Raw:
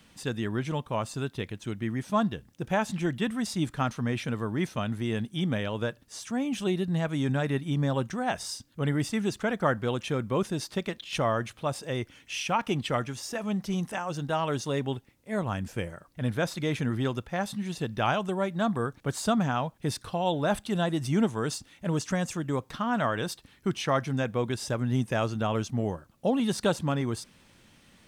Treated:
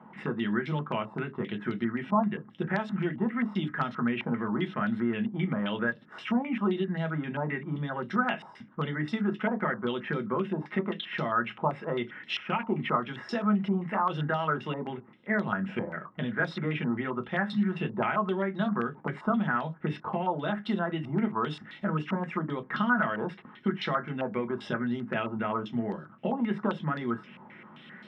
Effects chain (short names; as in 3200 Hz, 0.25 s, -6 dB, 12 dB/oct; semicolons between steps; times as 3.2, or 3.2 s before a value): compressor 12:1, threshold -34 dBFS, peak gain reduction 15 dB; reverb RT60 0.15 s, pre-delay 3 ms, DRR 3.5 dB; stepped low-pass 7.6 Hz 910–4200 Hz; gain -4.5 dB